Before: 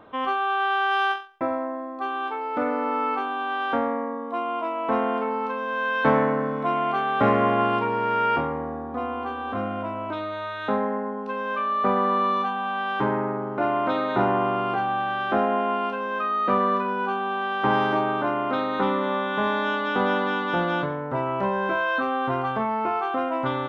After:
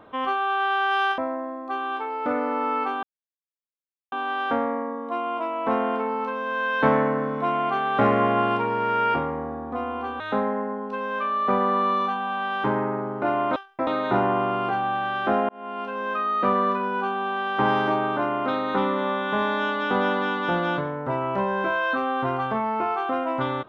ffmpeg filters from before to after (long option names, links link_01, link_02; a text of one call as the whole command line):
ffmpeg -i in.wav -filter_complex "[0:a]asplit=7[link_01][link_02][link_03][link_04][link_05][link_06][link_07];[link_01]atrim=end=1.182[link_08];[link_02]atrim=start=1.488:end=3.34,asetpts=PTS-STARTPTS,afade=type=out:start_time=1.848:duration=0.004:curve=hsin,apad=pad_dur=1.09[link_09];[link_03]atrim=start=3.34:end=9.422,asetpts=PTS-STARTPTS,afade=type=in:duration=0.004:curve=hsin[link_10];[link_04]atrim=start=10.558:end=13.922[link_11];[link_05]atrim=start=1.178:end=1.492[link_12];[link_06]atrim=start=13.918:end=15.54,asetpts=PTS-STARTPTS,afade=type=out:start_time=1.618:duration=0.004:curve=hsin[link_13];[link_07]atrim=start=15.54,asetpts=PTS-STARTPTS,afade=type=in:duration=0.55[link_14];[link_09][link_10]concat=n=2:v=0:a=1[link_15];[link_08][link_15]acrossfade=duration=0.004:curve1=hsin:curve2=hsin[link_16];[link_16][link_11]acrossfade=duration=0.004:curve1=hsin:curve2=hsin[link_17];[link_17][link_12]acrossfade=duration=0.004:curve1=hsin:curve2=hsin[link_18];[link_13][link_14]concat=n=2:v=0:a=1[link_19];[link_18][link_19]acrossfade=duration=0.004:curve1=hsin:curve2=hsin" out.wav